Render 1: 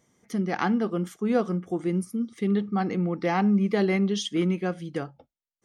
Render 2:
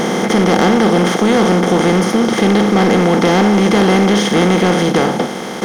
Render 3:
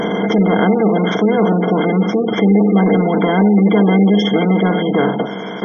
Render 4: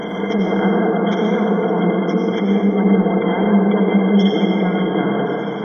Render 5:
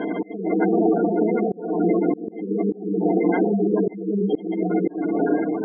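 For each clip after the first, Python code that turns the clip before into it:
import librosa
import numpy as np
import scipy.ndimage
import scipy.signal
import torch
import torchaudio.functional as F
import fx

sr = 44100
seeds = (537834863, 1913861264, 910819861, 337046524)

y1 = fx.bin_compress(x, sr, power=0.2)
y1 = fx.leveller(y1, sr, passes=2)
y2 = fx.spec_gate(y1, sr, threshold_db=-20, keep='strong')
y2 = fx.ripple_eq(y2, sr, per_octave=1.7, db=10)
y2 = y2 * librosa.db_to_amplitude(-2.5)
y3 = fx.rev_plate(y2, sr, seeds[0], rt60_s=2.8, hf_ratio=0.45, predelay_ms=75, drr_db=-1.5)
y3 = y3 * librosa.db_to_amplitude(-6.5)
y4 = fx.spec_gate(y3, sr, threshold_db=-15, keep='strong')
y4 = fx.cabinet(y4, sr, low_hz=190.0, low_slope=24, high_hz=2700.0, hz=(200.0, 300.0, 510.0, 920.0, 1500.0), db=(-8, 9, -6, -4, 6))
y4 = fx.auto_swell(y4, sr, attack_ms=358.0)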